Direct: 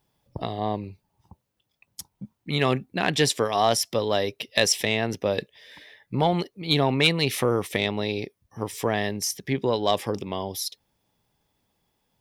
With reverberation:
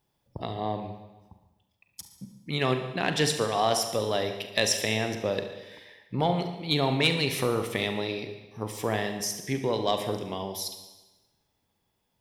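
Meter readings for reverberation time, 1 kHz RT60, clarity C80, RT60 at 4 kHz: 1.1 s, 1.1 s, 9.5 dB, 1.1 s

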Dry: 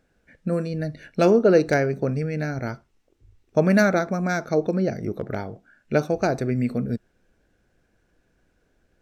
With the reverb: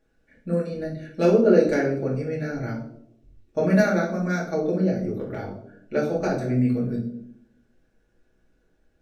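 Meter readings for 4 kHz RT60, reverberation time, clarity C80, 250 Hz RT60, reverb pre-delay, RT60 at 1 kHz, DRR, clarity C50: 0.45 s, 0.70 s, 10.5 dB, 1.1 s, 4 ms, 0.55 s, −5.0 dB, 6.5 dB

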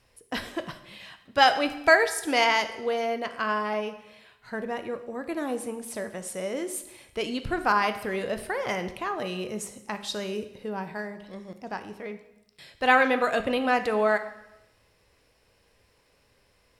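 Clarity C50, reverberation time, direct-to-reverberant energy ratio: 11.5 dB, 0.90 s, 8.5 dB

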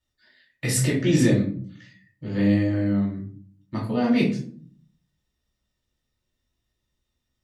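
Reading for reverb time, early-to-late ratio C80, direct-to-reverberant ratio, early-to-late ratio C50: 0.50 s, 11.0 dB, −5.5 dB, 6.0 dB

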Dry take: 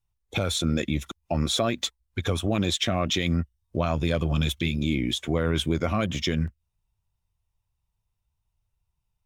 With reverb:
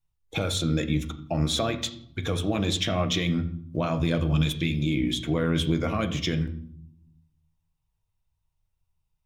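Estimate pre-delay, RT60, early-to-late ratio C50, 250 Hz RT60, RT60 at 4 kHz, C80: 6 ms, 0.65 s, 13.5 dB, 1.2 s, 0.45 s, 15.0 dB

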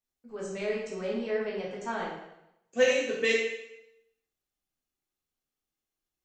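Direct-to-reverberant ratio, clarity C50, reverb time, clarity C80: −4.5 dB, 2.0 dB, 0.85 s, 5.0 dB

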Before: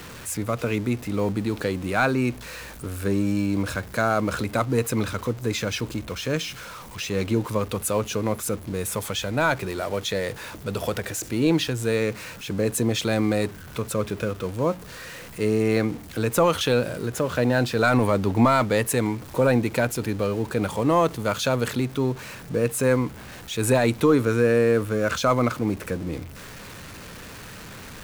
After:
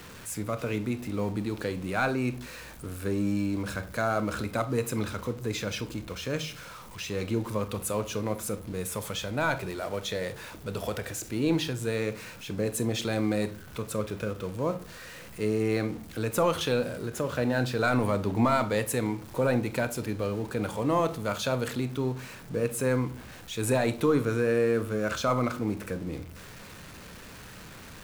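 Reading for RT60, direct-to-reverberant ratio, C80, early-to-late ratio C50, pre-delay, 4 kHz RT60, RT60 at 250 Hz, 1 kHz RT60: 0.45 s, 11.0 dB, 20.5 dB, 15.5 dB, 28 ms, 0.30 s, 0.60 s, 0.40 s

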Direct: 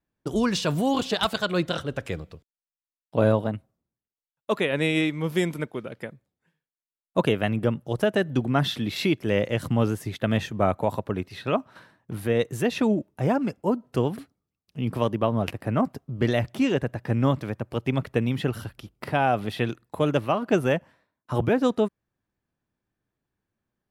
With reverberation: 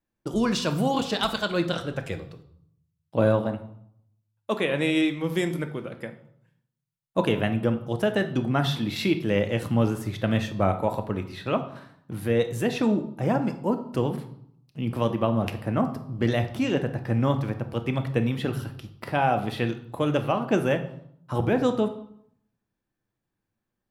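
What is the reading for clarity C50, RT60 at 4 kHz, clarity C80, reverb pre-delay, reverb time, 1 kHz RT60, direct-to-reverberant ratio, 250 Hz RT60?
11.5 dB, 0.55 s, 15.0 dB, 3 ms, 0.70 s, 0.70 s, 7.0 dB, 0.90 s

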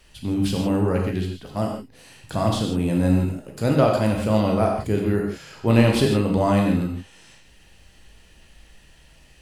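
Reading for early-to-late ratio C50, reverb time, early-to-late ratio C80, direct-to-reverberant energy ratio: 3.5 dB, non-exponential decay, 5.5 dB, 0.0 dB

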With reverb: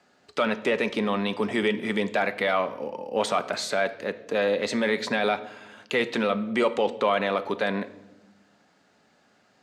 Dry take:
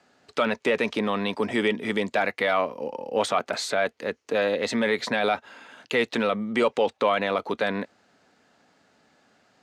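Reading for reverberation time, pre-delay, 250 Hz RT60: 1.0 s, 5 ms, 1.7 s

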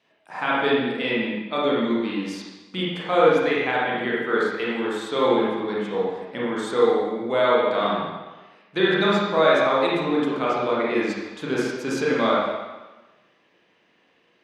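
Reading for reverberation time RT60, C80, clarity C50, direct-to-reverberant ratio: 1.2 s, 1.0 dB, −2.0 dB, −6.5 dB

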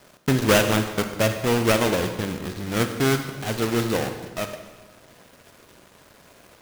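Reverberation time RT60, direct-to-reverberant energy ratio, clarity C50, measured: 1.4 s, 7.0 dB, 7.5 dB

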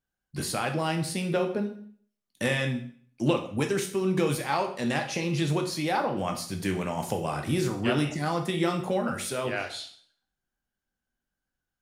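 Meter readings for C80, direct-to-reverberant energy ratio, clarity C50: 13.0 dB, 4.0 dB, 9.5 dB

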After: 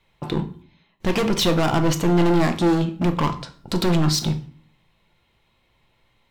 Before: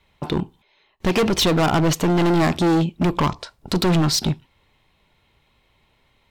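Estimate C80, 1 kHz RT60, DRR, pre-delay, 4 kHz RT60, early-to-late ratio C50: 18.0 dB, 0.50 s, 7.0 dB, 6 ms, 0.40 s, 13.5 dB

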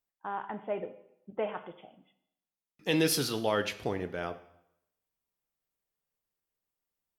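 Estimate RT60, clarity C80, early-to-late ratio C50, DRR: 0.80 s, 16.0 dB, 14.0 dB, 10.0 dB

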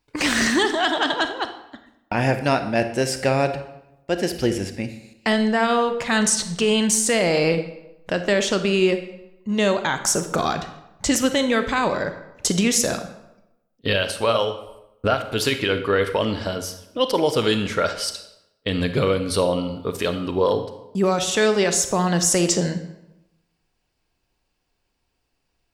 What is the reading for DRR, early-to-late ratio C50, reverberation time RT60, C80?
8.5 dB, 10.0 dB, 0.90 s, 13.0 dB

